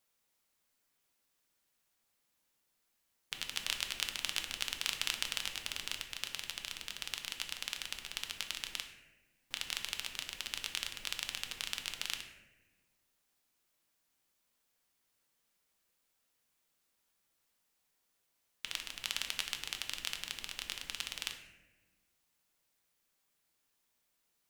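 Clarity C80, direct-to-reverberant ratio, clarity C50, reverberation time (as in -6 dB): 9.5 dB, 4.5 dB, 8.0 dB, 1.2 s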